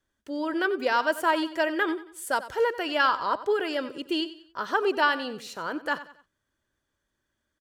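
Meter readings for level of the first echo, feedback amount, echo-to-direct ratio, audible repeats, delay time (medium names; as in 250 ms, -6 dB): -15.0 dB, 37%, -14.5 dB, 3, 92 ms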